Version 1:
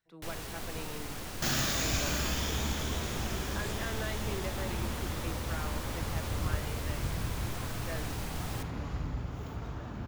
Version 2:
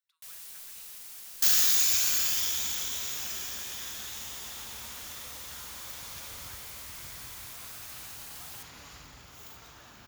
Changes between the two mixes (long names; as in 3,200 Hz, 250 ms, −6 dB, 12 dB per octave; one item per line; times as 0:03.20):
speech: add Chebyshev high-pass with heavy ripple 1,000 Hz, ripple 3 dB
second sound +10.0 dB
master: add first-order pre-emphasis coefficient 0.97